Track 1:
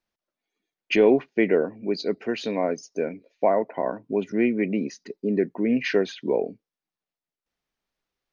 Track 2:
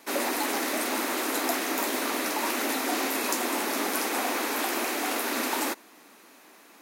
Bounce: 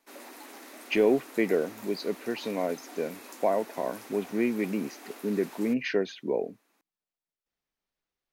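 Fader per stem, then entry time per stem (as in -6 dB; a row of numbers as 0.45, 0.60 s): -5.0, -18.5 dB; 0.00, 0.00 s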